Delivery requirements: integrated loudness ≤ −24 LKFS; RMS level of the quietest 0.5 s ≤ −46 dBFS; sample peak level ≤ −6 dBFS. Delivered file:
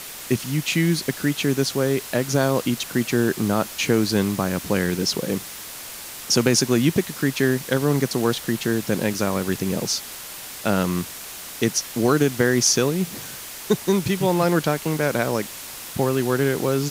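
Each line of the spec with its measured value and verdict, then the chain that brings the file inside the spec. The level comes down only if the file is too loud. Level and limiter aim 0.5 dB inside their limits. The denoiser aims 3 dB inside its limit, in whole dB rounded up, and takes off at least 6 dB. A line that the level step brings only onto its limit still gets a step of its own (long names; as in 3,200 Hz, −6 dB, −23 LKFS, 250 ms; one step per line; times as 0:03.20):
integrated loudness −22.0 LKFS: out of spec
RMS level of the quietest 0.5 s −36 dBFS: out of spec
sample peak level −3.5 dBFS: out of spec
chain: broadband denoise 11 dB, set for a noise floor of −36 dBFS
level −2.5 dB
brickwall limiter −6.5 dBFS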